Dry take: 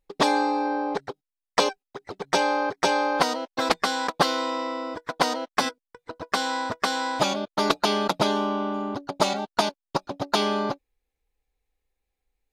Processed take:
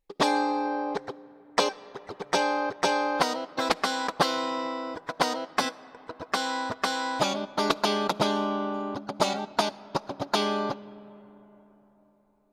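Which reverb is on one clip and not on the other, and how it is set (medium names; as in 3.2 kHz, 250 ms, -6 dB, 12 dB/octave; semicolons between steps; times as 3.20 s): algorithmic reverb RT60 4.3 s, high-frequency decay 0.4×, pre-delay 15 ms, DRR 18.5 dB; trim -2.5 dB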